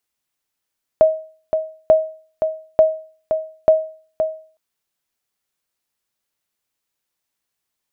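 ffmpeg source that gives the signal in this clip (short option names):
-f lavfi -i "aevalsrc='0.631*(sin(2*PI*633*mod(t,0.89))*exp(-6.91*mod(t,0.89)/0.43)+0.422*sin(2*PI*633*max(mod(t,0.89)-0.52,0))*exp(-6.91*max(mod(t,0.89)-0.52,0)/0.43))':d=3.56:s=44100"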